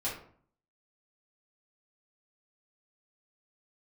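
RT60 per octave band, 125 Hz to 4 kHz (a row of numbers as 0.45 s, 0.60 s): 0.70 s, 0.65 s, 0.55 s, 0.50 s, 0.40 s, 0.30 s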